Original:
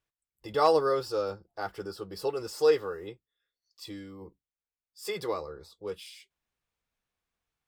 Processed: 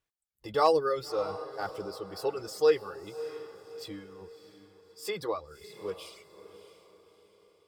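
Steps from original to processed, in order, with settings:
reverb reduction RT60 1.1 s
feedback delay with all-pass diffusion 620 ms, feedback 43%, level −13.5 dB

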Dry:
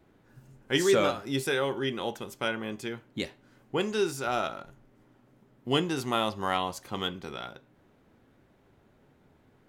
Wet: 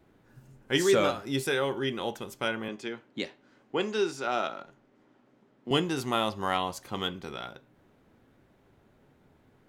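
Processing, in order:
0:02.68–0:05.71: three-way crossover with the lows and the highs turned down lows −17 dB, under 170 Hz, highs −18 dB, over 7,400 Hz

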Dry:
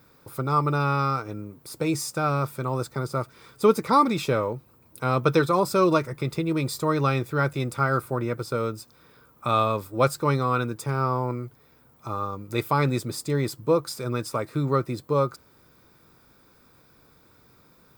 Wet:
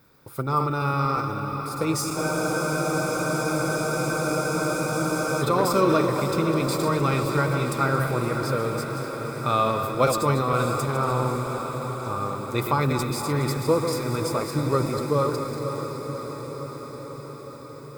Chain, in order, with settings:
feedback delay that plays each chunk backwards 117 ms, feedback 45%, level −7.5 dB
transient designer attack +3 dB, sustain +7 dB
feedback delay with all-pass diffusion 559 ms, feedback 71%, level −7.5 dB
frozen spectrum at 0:02.18, 3.24 s
level −2 dB

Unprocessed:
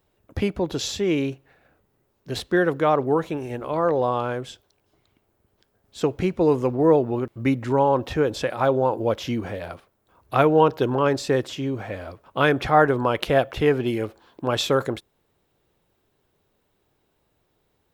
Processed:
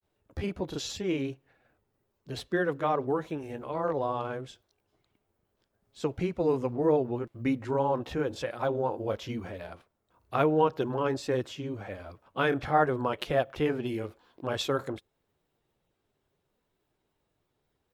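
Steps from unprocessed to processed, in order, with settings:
granular cloud 117 ms, spray 18 ms, pitch spread up and down by 0 semitones
level −6 dB

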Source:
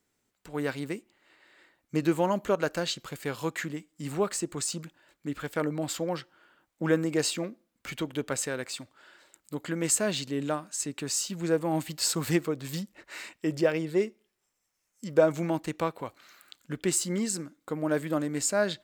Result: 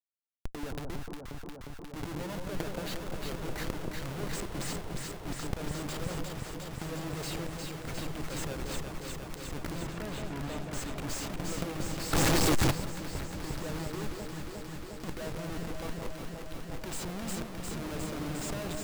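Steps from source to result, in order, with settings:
comparator with hysteresis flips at −34 dBFS
compressor whose output falls as the input rises −36 dBFS, ratio −0.5
0:09.79–0:10.58: low-pass filter 2,900 Hz 12 dB per octave
on a send: delay that swaps between a low-pass and a high-pass 178 ms, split 1,000 Hz, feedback 90%, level −3 dB
0:12.13–0:12.71: on the sum: leveller curve on the samples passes 5

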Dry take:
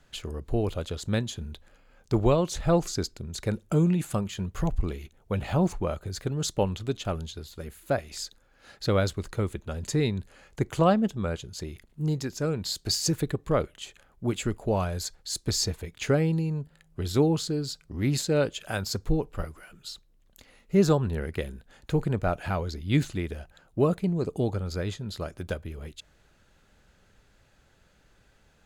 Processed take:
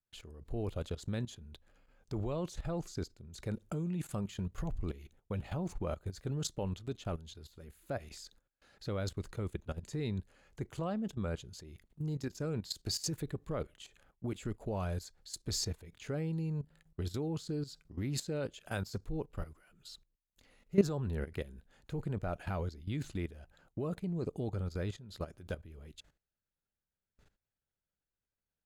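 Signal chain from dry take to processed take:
noise gate with hold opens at −49 dBFS
low-shelf EQ 420 Hz +3 dB
output level in coarse steps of 15 dB
level −5 dB

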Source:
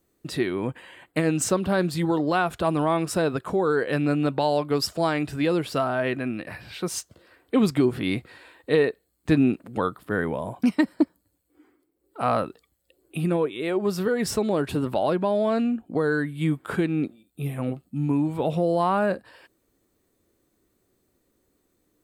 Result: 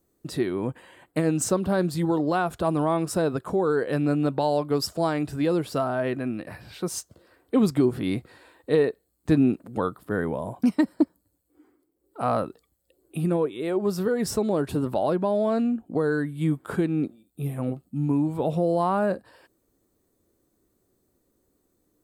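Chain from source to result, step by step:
parametric band 2,500 Hz −7.5 dB 1.6 octaves

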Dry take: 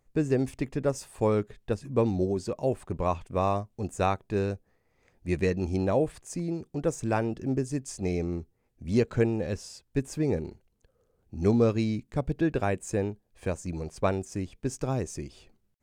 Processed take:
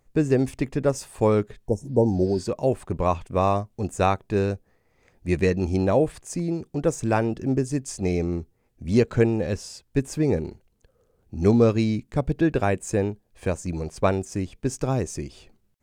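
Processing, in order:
healed spectral selection 0:01.65–0:02.41, 970–5,300 Hz both
level +5 dB

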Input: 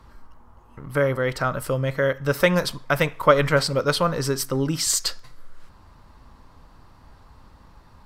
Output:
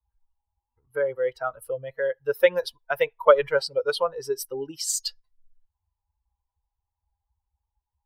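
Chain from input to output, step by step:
spectral dynamics exaggerated over time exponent 2
low shelf with overshoot 320 Hz −13 dB, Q 3
level −2 dB

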